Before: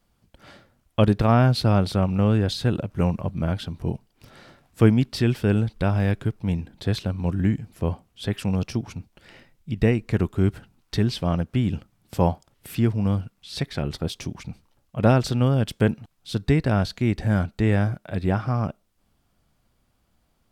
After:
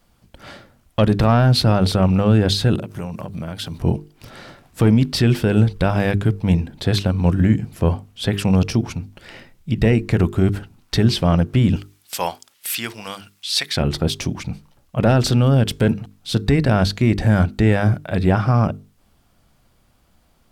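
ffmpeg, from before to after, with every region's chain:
-filter_complex "[0:a]asettb=1/sr,asplit=3[s0][s1][s2];[s0]atrim=end=2.754[s3];[s1]atrim=start=2.75:end=3.78,asetpts=PTS-STARTPTS,afade=t=in:d=0.004:c=qsin,afade=t=out:st=1.026:d=0.004:c=qsin,highpass=96,highshelf=f=4600:g=10,acompressor=threshold=0.0224:ratio=6:attack=3.2:release=140:knee=1:detection=peak[s4];[s2]atrim=start=3.776[s5];[s3][s4]acrossfade=d=0.004:c1=hsin:c2=qsin[s6];[s6][s5]acrossfade=d=0.004:c1=qsin:c2=hsin,asettb=1/sr,asplit=3[s7][s8][s9];[s7]atrim=end=11.764[s10];[s8]atrim=start=11.76:end=13.77,asetpts=PTS-STARTPTS,afade=t=in:d=0.004:c=qsin,afade=t=out:st=2.006:d=0.004:c=qsin,highpass=f=960:p=1,tiltshelf=f=1300:g=-7.5[s11];[s9]atrim=start=13.766[s12];[s10][s11]acrossfade=d=0.004:c1=hsin:c2=qsin[s13];[s13][s12]acrossfade=d=0.004:c1=qsin:c2=hsin,acontrast=83,alimiter=limit=0.376:level=0:latency=1:release=26,bandreject=f=50:t=h:w=6,bandreject=f=100:t=h:w=6,bandreject=f=150:t=h:w=6,bandreject=f=200:t=h:w=6,bandreject=f=250:t=h:w=6,bandreject=f=300:t=h:w=6,bandreject=f=350:t=h:w=6,bandreject=f=400:t=h:w=6,bandreject=f=450:t=h:w=6,volume=1.26"

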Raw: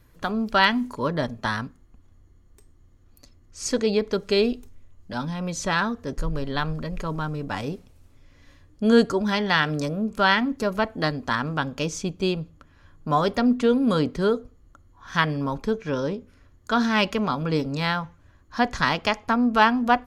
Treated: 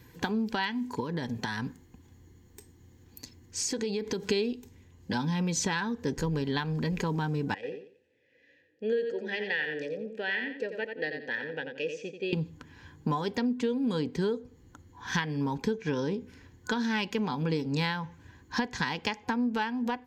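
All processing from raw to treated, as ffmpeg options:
-filter_complex "[0:a]asettb=1/sr,asplit=3[s0][s1][s2];[s0]atrim=end=1.004[s3];[s1]atrim=start=1:end=4.25,asetpts=PTS-STARTPTS,afade=t=in:d=0.004:c=qsin,afade=t=out:st=3.246:d=0.004:c=qsin,highshelf=f=9000:g=7,acompressor=threshold=0.0224:ratio=10:attack=3.2:release=140:knee=1:detection=peak[s4];[s2]atrim=start=4.246[s5];[s3][s4]acrossfade=d=0.004:c1=hsin:c2=qsin[s6];[s6][s5]acrossfade=d=0.004:c1=qsin:c2=hsin,asettb=1/sr,asplit=3[s7][s8][s9];[s7]atrim=end=7.544[s10];[s8]atrim=start=7.54:end=12.33,asetpts=PTS-STARTPTS,afade=t=in:d=0.004:c=qsin,afade=t=out:st=4.786:d=0.004:c=qsin,asplit=3[s11][s12][s13];[s11]bandpass=f=530:t=q:w=8,volume=1[s14];[s12]bandpass=f=1840:t=q:w=8,volume=0.501[s15];[s13]bandpass=f=2480:t=q:w=8,volume=0.355[s16];[s14][s15][s16]amix=inputs=3:normalize=0,aecho=1:1:88|176|264:0.398|0.104|0.0269,atrim=end_sample=211239[s17];[s9]atrim=start=12.326[s18];[s10][s17]acrossfade=d=0.004:c1=hsin:c2=qsin[s19];[s19][s18]acrossfade=d=0.004:c1=qsin:c2=hsin,highpass=96,acompressor=threshold=0.0251:ratio=12,superequalizer=8b=0.282:10b=0.316:16b=0.447,volume=2.11"

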